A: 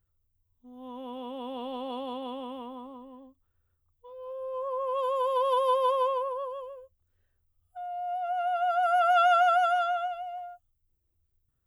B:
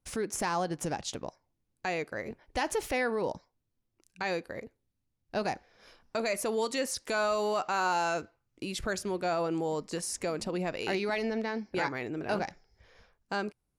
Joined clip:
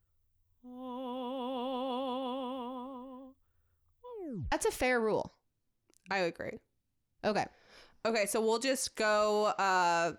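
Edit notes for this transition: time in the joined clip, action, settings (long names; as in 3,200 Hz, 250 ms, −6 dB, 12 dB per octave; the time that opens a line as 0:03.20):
A
0:04.10: tape stop 0.42 s
0:04.52: continue with B from 0:02.62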